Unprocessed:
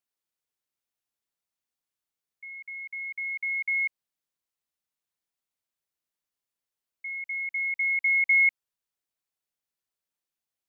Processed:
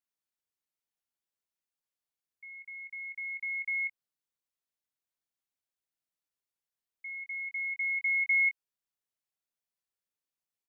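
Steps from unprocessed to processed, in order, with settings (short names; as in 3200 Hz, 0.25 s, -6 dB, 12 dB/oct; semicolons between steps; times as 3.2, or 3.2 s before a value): doubler 22 ms -10.5 dB; gain -5.5 dB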